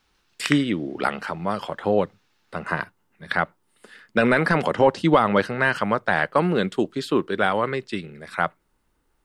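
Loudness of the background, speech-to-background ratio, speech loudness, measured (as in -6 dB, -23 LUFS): -30.0 LUFS, 7.0 dB, -23.0 LUFS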